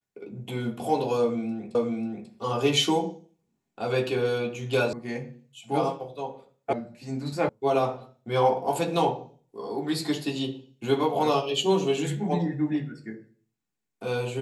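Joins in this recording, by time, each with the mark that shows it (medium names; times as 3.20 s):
1.75 s: repeat of the last 0.54 s
4.93 s: sound stops dead
6.73 s: sound stops dead
7.49 s: sound stops dead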